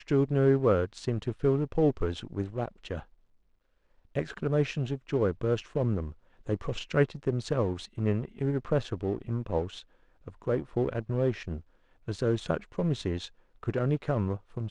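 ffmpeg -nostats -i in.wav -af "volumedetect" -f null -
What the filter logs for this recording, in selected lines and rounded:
mean_volume: -29.9 dB
max_volume: -10.9 dB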